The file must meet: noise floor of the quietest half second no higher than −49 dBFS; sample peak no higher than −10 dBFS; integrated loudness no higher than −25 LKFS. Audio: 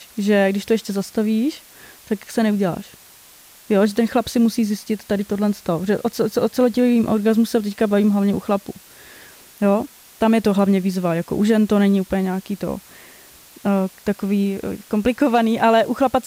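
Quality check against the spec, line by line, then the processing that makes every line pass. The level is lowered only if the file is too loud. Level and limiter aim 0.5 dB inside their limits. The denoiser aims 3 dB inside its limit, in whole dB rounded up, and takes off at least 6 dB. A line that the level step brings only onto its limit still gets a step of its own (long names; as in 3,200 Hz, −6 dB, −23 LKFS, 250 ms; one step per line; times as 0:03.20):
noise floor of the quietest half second −47 dBFS: out of spec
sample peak −4.5 dBFS: out of spec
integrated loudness −19.5 LKFS: out of spec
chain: level −6 dB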